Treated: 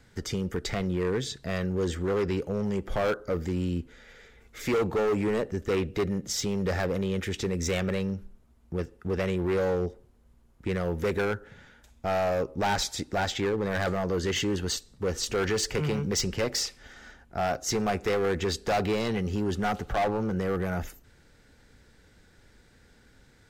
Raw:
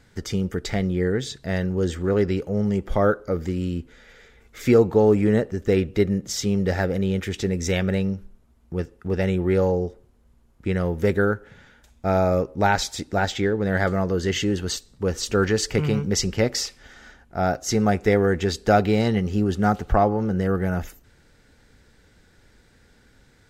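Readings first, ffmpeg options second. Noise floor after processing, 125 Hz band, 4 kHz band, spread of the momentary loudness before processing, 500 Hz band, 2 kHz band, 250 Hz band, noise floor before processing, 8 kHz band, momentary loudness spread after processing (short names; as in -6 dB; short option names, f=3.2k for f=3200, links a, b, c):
-59 dBFS, -7.5 dB, -2.5 dB, 8 LU, -6.0 dB, -5.0 dB, -7.5 dB, -57 dBFS, -2.5 dB, 7 LU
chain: -filter_complex "[0:a]acrossover=split=330|1400|4200[a][b][c][d];[a]alimiter=limit=-22.5dB:level=0:latency=1:release=39[e];[e][b][c][d]amix=inputs=4:normalize=0,asoftclip=type=hard:threshold=-20.5dB,volume=-2dB"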